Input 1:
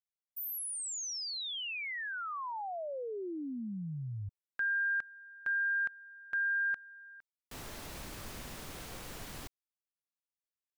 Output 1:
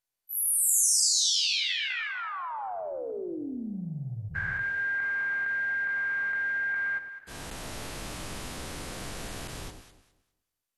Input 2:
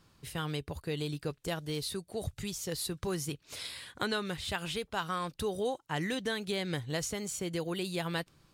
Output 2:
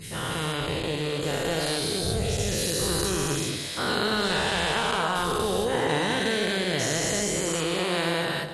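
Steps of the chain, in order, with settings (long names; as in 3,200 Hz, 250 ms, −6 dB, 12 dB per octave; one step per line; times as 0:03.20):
every bin's largest magnitude spread in time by 480 ms
delay that swaps between a low-pass and a high-pass 102 ms, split 930 Hz, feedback 50%, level −5 dB
MP2 64 kbit/s 48,000 Hz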